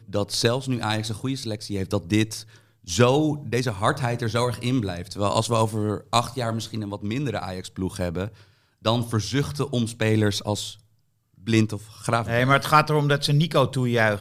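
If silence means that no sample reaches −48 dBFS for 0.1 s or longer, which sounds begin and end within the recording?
0:02.84–0:08.50
0:08.82–0:10.80

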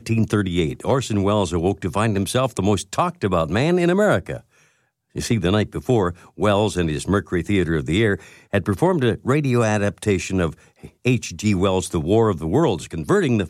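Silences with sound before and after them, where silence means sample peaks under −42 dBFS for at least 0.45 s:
0:04.41–0:05.15

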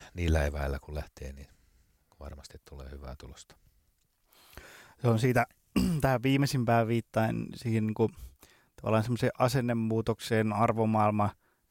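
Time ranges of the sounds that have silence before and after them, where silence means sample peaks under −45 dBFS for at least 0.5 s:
0:02.12–0:03.51

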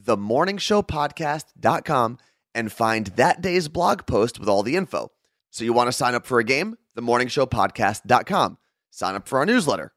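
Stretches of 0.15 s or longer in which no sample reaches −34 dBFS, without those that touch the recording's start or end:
0:01.42–0:01.63
0:02.14–0:02.55
0:05.06–0:05.54
0:06.74–0:06.97
0:08.53–0:08.98

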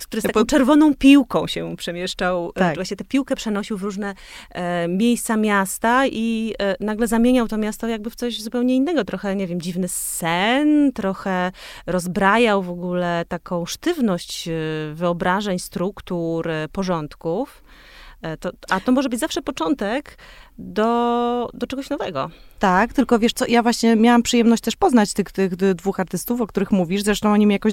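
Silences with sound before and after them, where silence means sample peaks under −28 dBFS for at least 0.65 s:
0:17.45–0:18.24

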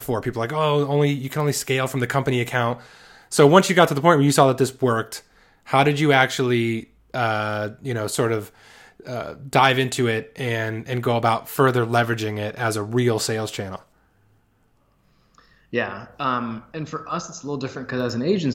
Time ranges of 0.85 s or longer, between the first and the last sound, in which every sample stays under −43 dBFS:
0:13.82–0:15.35

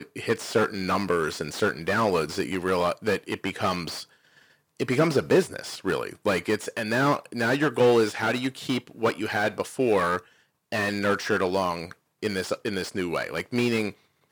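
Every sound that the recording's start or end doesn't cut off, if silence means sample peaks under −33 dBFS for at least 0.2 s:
0:04.80–0:10.18
0:10.72–0:11.92
0:12.23–0:13.90

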